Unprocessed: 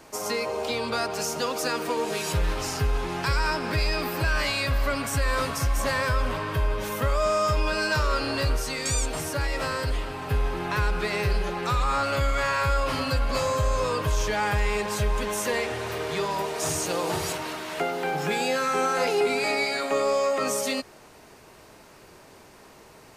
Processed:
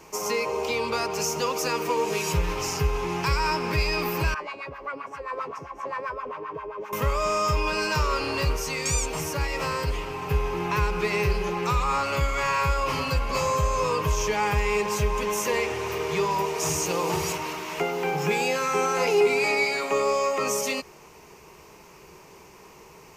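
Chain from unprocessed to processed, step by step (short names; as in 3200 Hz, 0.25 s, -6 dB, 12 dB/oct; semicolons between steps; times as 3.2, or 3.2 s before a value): ripple EQ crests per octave 0.77, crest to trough 8 dB; 4.34–6.93 LFO band-pass sine 7.6 Hz 350–1500 Hz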